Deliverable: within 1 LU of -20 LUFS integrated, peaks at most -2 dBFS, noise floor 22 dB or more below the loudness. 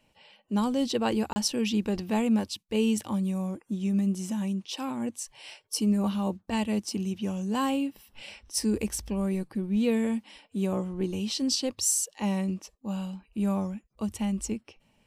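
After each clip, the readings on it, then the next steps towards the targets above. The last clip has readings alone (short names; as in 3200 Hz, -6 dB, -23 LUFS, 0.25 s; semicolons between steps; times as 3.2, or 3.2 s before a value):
dropouts 1; longest dropout 30 ms; loudness -29.5 LUFS; peak -13.0 dBFS; loudness target -20.0 LUFS
-> interpolate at 1.33, 30 ms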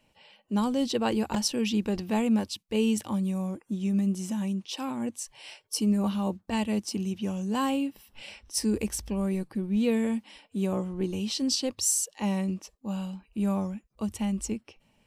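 dropouts 0; loudness -29.5 LUFS; peak -13.0 dBFS; loudness target -20.0 LUFS
-> gain +9.5 dB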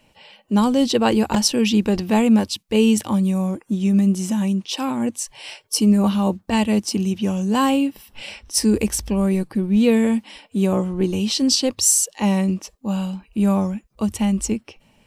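loudness -20.0 LUFS; peak -3.5 dBFS; noise floor -59 dBFS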